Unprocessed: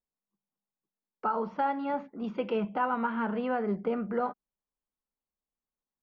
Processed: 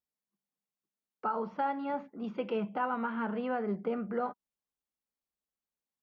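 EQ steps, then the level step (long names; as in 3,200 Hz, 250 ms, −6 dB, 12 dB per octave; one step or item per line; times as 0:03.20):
high-pass filter 49 Hz
notch filter 960 Hz, Q 27
−3.0 dB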